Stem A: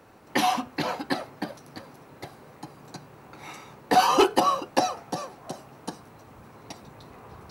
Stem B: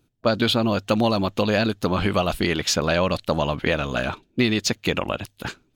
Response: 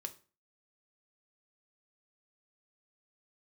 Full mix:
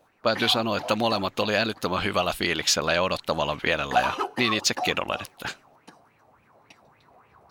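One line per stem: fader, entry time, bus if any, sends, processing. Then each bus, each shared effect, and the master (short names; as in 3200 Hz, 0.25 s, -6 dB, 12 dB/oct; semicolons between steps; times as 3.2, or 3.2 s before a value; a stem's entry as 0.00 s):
-11.0 dB, 0.00 s, no send, resonator 140 Hz, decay 1.7 s, mix 40%; LFO bell 3.5 Hz 620–2600 Hz +16 dB
+1.0 dB, 0.00 s, no send, low shelf 430 Hz -11 dB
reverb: off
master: dry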